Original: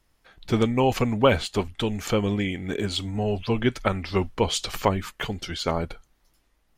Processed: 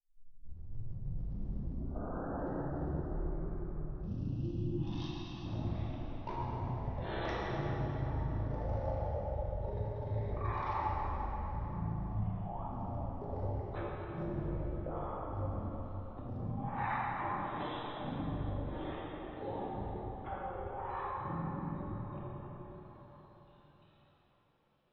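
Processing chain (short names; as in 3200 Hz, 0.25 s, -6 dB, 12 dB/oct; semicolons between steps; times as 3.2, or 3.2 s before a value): tape start at the beginning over 1.65 s; Doppler pass-by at 1.94, 22 m/s, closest 16 m; in parallel at -3.5 dB: wavefolder -26.5 dBFS; on the sum: three-band isolator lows -13 dB, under 300 Hz, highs -17 dB, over 3400 Hz; wide varispeed 0.272×; spectral gain 3.62–5.45, 360–2500 Hz -26 dB; reverse; compressor 6:1, threshold -40 dBFS, peak gain reduction 21 dB; reverse; pre-emphasis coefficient 0.9; plate-style reverb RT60 4.1 s, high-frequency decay 0.6×, DRR -6.5 dB; mismatched tape noise reduction encoder only; gain +17.5 dB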